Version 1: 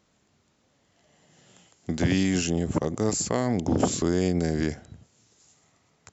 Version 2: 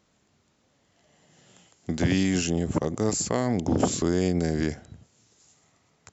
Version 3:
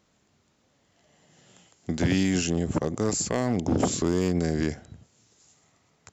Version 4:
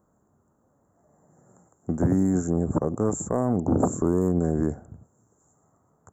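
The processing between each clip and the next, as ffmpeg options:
-af anull
-af "volume=6.31,asoftclip=hard,volume=0.158"
-af "asuperstop=centerf=3400:order=8:qfactor=0.51,volume=1.26"

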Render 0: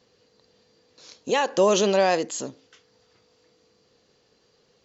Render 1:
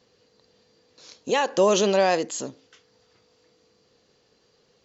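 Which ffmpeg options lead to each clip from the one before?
-af anull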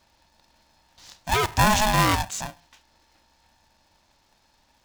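-af "aeval=exprs='val(0)*sgn(sin(2*PI*430*n/s))':c=same"

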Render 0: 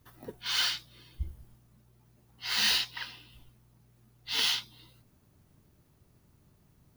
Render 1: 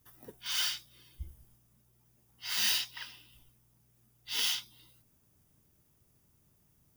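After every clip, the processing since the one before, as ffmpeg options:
-af "highshelf=f=4200:g=11.5,bandreject=f=4200:w=6.8,volume=0.422"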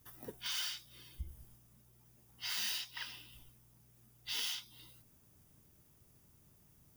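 -af "acompressor=threshold=0.00794:ratio=3,volume=1.41"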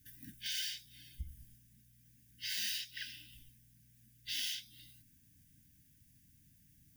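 -af "afftfilt=real='re*(1-between(b*sr/4096,320,1500))':imag='im*(1-between(b*sr/4096,320,1500))':win_size=4096:overlap=0.75"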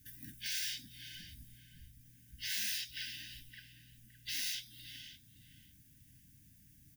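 -filter_complex "[0:a]asplit=2[s0][s1];[s1]adelay=565,lowpass=f=1700:p=1,volume=0.376,asplit=2[s2][s3];[s3]adelay=565,lowpass=f=1700:p=1,volume=0.34,asplit=2[s4][s5];[s5]adelay=565,lowpass=f=1700:p=1,volume=0.34,asplit=2[s6][s7];[s7]adelay=565,lowpass=f=1700:p=1,volume=0.34[s8];[s0][s2][s4][s6][s8]amix=inputs=5:normalize=0,afftfilt=real='re*lt(hypot(re,im),0.0282)':imag='im*lt(hypot(re,im),0.0282)':win_size=1024:overlap=0.75,aeval=exprs='0.0447*(cos(1*acos(clip(val(0)/0.0447,-1,1)))-cos(1*PI/2))+0.000891*(cos(5*acos(clip(val(0)/0.0447,-1,1)))-cos(5*PI/2))+0.000251*(cos(6*acos(clip(val(0)/0.0447,-1,1)))-cos(6*PI/2))+0.000398*(cos(8*acos(clip(val(0)/0.0447,-1,1)))-cos(8*PI/2))':c=same,volume=1.33"

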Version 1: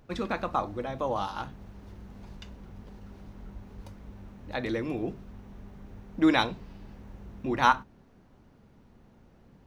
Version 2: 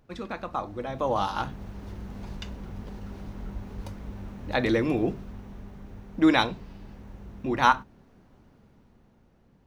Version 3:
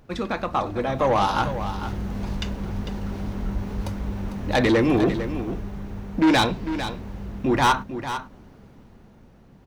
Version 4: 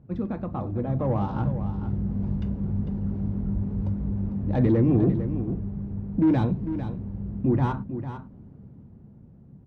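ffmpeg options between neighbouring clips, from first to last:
-af "dynaudnorm=f=120:g=17:m=3.98,volume=0.596"
-af "asoftclip=type=tanh:threshold=0.075,aecho=1:1:450:0.299,volume=2.82"
-af "bandpass=f=130:t=q:w=1.2:csg=0,volume=2"

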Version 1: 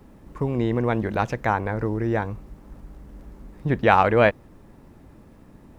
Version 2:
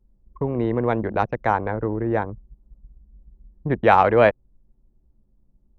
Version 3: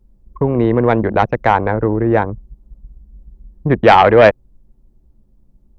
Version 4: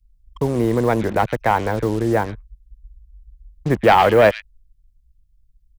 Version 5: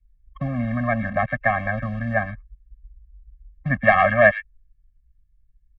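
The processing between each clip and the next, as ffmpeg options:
-filter_complex "[0:a]acrossover=split=360|1200[s0][s1][s2];[s1]acontrast=33[s3];[s0][s3][s2]amix=inputs=3:normalize=0,anlmdn=251,volume=0.841"
-af "aeval=exprs='0.891*sin(PI/2*1.78*val(0)/0.891)':c=same"
-filter_complex "[0:a]acrossover=split=110|2100[s0][s1][s2];[s1]acrusher=bits=4:mix=0:aa=0.5[s3];[s2]aecho=1:1:110:0.596[s4];[s0][s3][s4]amix=inputs=3:normalize=0,volume=0.596"
-af "lowpass=f=1900:t=q:w=4.3,afftfilt=real='re*eq(mod(floor(b*sr/1024/260),2),0)':imag='im*eq(mod(floor(b*sr/1024/260),2),0)':win_size=1024:overlap=0.75,volume=0.75"

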